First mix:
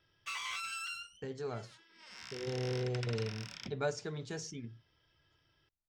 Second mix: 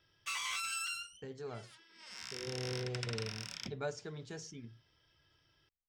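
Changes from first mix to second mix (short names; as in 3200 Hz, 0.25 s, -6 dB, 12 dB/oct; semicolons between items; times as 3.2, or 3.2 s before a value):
speech -4.5 dB; background: add bell 11000 Hz +8.5 dB 1.6 oct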